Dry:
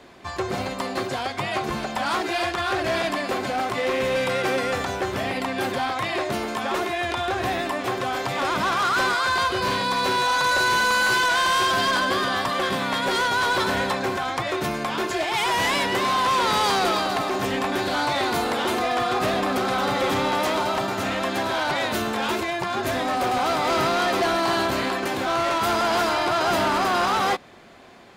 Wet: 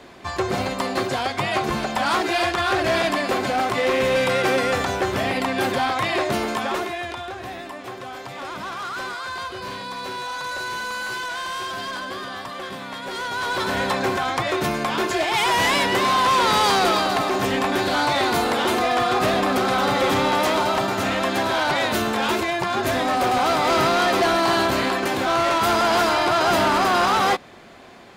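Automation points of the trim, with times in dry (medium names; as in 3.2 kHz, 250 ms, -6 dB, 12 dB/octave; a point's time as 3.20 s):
6.51 s +3.5 dB
7.38 s -8.5 dB
13.03 s -8.5 dB
14.00 s +3 dB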